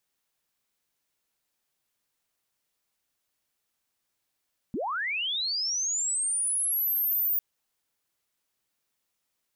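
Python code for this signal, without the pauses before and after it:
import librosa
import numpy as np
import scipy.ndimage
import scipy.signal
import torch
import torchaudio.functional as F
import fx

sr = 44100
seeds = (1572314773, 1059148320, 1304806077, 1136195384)

y = fx.chirp(sr, length_s=2.65, from_hz=180.0, to_hz=15000.0, law='linear', from_db=-28.0, to_db=-23.0)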